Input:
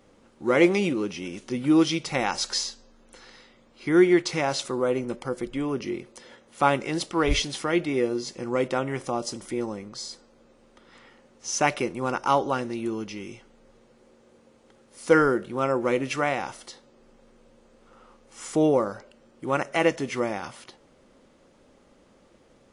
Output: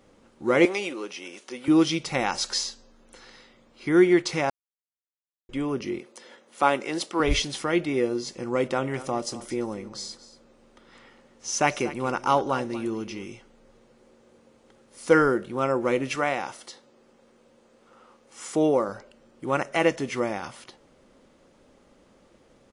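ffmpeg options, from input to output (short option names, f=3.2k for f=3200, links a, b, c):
-filter_complex "[0:a]asettb=1/sr,asplit=3[a][b][c];[a]atrim=end=0.654[d];[b]atrim=start=0.65:end=1.68,asetpts=PTS-STARTPTS,afade=t=in:d=0.004:c=qsin,afade=t=out:st=1.026:d=0.004:c=qsin,highpass=500[e];[c]atrim=start=1.676[f];[d][e]acrossfade=d=0.004:c1=hsin:c2=qsin[g];[g][f]acrossfade=d=0.004:c1=qsin:c2=hsin,asettb=1/sr,asplit=3[h][i][j];[h]atrim=end=5.994[k];[i]atrim=start=5.99:end=7.2,asetpts=PTS-STARTPTS,afade=t=in:d=0.004:c=qsin,afade=t=out:st=1.206:d=0.004:c=qsin,highpass=250[l];[j]atrim=start=7.196[m];[k][l]acrossfade=d=0.004:c1=hsin:c2=qsin[n];[n][m]acrossfade=d=0.004:c1=qsin:c2=hsin,asplit=3[o][p][q];[o]afade=t=out:st=8.63:d=0.02[r];[p]aecho=1:1:234:0.168,afade=t=in:st=8.63:d=0.02,afade=t=out:st=13.24:d=0.02[s];[q]afade=t=in:st=13.24:d=0.02[t];[r][s][t]amix=inputs=3:normalize=0,asettb=1/sr,asplit=3[u][v][w];[u]atrim=end=16.154[x];[v]atrim=start=16.15:end=18.89,asetpts=PTS-STARTPTS,afade=t=in:d=0.004:c=qsin,afade=t=out:st=2.736:d=0.004:c=qsin,highpass=f=180:p=1[y];[w]atrim=start=18.886[z];[x][y]acrossfade=d=0.004:c1=hsin:c2=qsin[aa];[aa][z]acrossfade=d=0.004:c1=qsin:c2=hsin,asplit=3[ab][ac][ad];[ab]atrim=end=4.5,asetpts=PTS-STARTPTS,afade=t=out:st=4.496:d=0.004:c=hsin[ae];[ac]atrim=start=4.5:end=5.49,asetpts=PTS-STARTPTS,volume=0[af];[ad]atrim=start=5.49,asetpts=PTS-STARTPTS,afade=t=in:d=0.004:c=hsin[ag];[ae][af][ag]concat=n=3:v=0:a=1"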